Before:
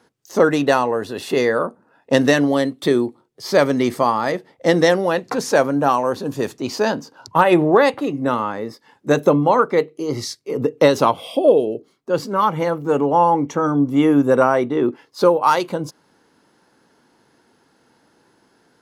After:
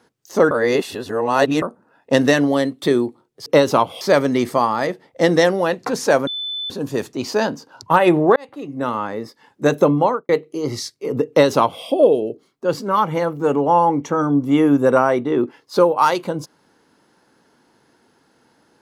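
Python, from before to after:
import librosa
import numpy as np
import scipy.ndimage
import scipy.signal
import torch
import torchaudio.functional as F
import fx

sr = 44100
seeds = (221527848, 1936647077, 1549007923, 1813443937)

y = fx.studio_fade_out(x, sr, start_s=9.45, length_s=0.29)
y = fx.edit(y, sr, fx.reverse_span(start_s=0.51, length_s=1.11),
    fx.bleep(start_s=5.72, length_s=0.43, hz=3510.0, db=-23.5),
    fx.fade_in_span(start_s=7.81, length_s=0.7),
    fx.duplicate(start_s=10.74, length_s=0.55, to_s=3.46), tone=tone)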